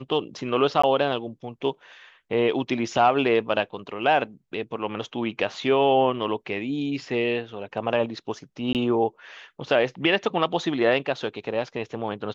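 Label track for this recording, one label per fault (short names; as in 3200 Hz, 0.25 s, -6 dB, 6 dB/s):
0.820000	0.830000	gap 15 ms
8.730000	8.750000	gap 18 ms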